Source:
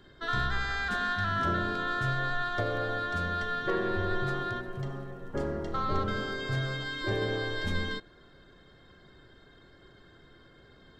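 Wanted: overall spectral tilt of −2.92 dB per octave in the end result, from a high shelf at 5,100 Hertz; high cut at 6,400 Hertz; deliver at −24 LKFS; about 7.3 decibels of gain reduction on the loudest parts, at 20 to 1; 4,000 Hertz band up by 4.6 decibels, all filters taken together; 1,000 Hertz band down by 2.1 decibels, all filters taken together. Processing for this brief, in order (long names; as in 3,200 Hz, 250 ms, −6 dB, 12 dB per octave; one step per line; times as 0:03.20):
low-pass filter 6,400 Hz
parametric band 1,000 Hz −4 dB
parametric band 4,000 Hz +8 dB
high-shelf EQ 5,100 Hz −5 dB
downward compressor 20 to 1, threshold −32 dBFS
level +12.5 dB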